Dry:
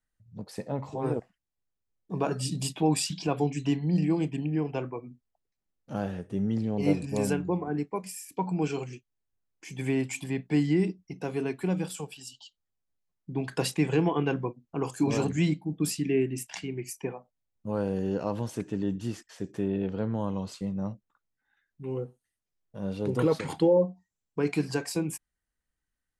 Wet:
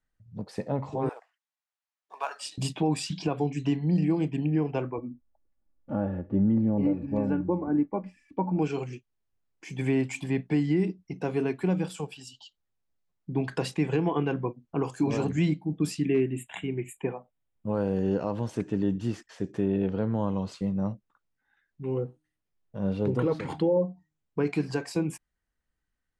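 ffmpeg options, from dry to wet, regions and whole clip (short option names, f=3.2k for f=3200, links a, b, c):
-filter_complex "[0:a]asettb=1/sr,asplit=3[a][b][c];[a]atrim=end=1.094[d];[b]atrim=start=1.09:end=2.58,asetpts=PTS-STARTPTS,afade=t=in:d=0.004:c=qsin,afade=t=out:st=1.486:d=0.004:c=qsin,highpass=f=800:w=0.5412,highpass=f=800:w=1.3066,acrusher=bits=5:mode=log:mix=0:aa=0.000001[e];[c]atrim=start=2.576[f];[d][e]acrossfade=d=0.004:c1=hsin:c2=qsin[g];[g][f]acrossfade=d=0.004:c1=qsin:c2=hsin,asettb=1/sr,asplit=3[h][i][j];[h]atrim=end=4.984[k];[i]atrim=start=4.98:end=8.59,asetpts=PTS-STARTPTS,afade=t=in:d=0.004:c=qsin,afade=t=out:st=3.606:d=0.004:c=qsin,lowpass=1.4k,lowshelf=f=170:g=6.5,aecho=1:1:3.5:0.61,atrim=end_sample=159201[l];[j]atrim=start=8.586[m];[k][l]acrossfade=d=0.004:c1=hsin:c2=qsin[n];[n][m]acrossfade=d=0.004:c1=qsin:c2=hsin,asettb=1/sr,asplit=3[o][p][q];[o]atrim=end=16.054[r];[p]atrim=start=16.05:end=17.74,asetpts=PTS-STARTPTS,afade=t=in:d=0.004:c=qsin,afade=t=out:st=1.686:d=0.004:c=qsin,asuperstop=centerf=5200:order=20:qfactor=1.7,asoftclip=type=hard:threshold=-17.5dB[s];[q]atrim=start=17.736[t];[r][s]acrossfade=d=0.004:c1=hsin:c2=qsin[u];[u][t]acrossfade=d=0.004:c1=qsin:c2=hsin,asettb=1/sr,asplit=3[v][w][x];[v]atrim=end=22.034[y];[w]atrim=start=22.03:end=24.44,asetpts=PTS-STARTPTS,afade=t=in:d=0.004:c=qsin,afade=t=out:st=2.406:d=0.004:c=qsin,bass=f=250:g=2,treble=f=4k:g=-4,bandreject=f=153.9:t=h:w=4,bandreject=f=307.8:t=h:w=4[z];[x]atrim=start=24.436[aa];[y][z]acrossfade=d=0.004:c1=hsin:c2=qsin[ab];[ab][aa]acrossfade=d=0.004:c1=qsin:c2=hsin,lowpass=10k,highshelf=f=4.2k:g=-8.5,alimiter=limit=-20dB:level=0:latency=1:release=341,volume=3.5dB"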